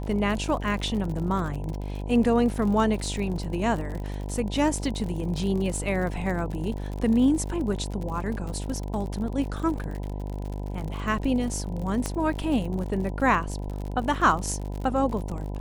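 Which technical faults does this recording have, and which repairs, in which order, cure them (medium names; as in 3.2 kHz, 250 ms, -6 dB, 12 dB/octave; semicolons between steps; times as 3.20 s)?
buzz 50 Hz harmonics 20 -32 dBFS
crackle 56 per s -32 dBFS
12.06 s: pop -14 dBFS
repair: de-click; de-hum 50 Hz, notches 20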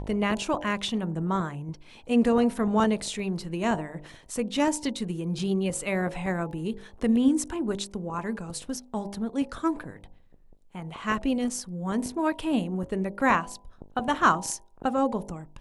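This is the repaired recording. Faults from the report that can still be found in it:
nothing left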